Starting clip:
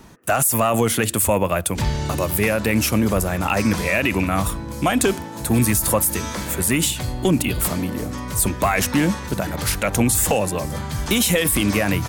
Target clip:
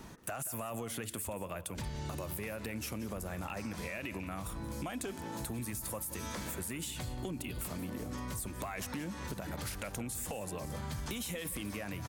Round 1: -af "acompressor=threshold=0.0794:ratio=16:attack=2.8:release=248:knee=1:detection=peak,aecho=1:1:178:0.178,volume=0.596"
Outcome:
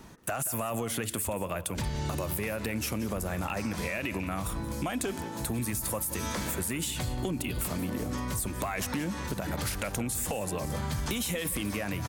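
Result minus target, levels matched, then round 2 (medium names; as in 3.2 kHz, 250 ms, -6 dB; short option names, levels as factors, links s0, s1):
compression: peak gain reduction -7.5 dB
-af "acompressor=threshold=0.0316:ratio=16:attack=2.8:release=248:knee=1:detection=peak,aecho=1:1:178:0.178,volume=0.596"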